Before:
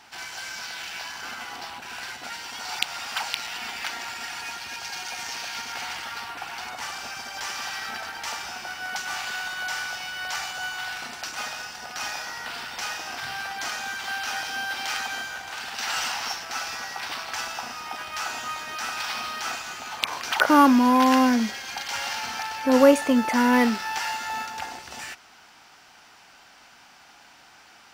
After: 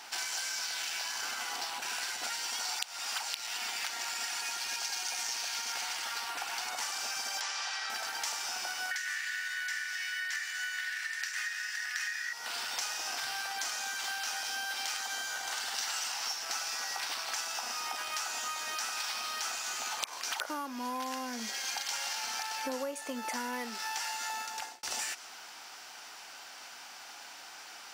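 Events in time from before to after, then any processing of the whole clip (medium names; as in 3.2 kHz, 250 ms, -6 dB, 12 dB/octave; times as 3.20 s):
7.41–7.90 s: band-pass 480–5400 Hz
8.91–12.33 s: resonant high-pass 1.8 kHz, resonance Q 13
15.02–15.89 s: band-stop 2.5 kHz
24.29–24.83 s: fade out
whole clip: tone controls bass -14 dB, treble +6 dB; compression 12:1, threshold -36 dBFS; dynamic bell 7.8 kHz, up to +4 dB, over -52 dBFS, Q 0.89; trim +2 dB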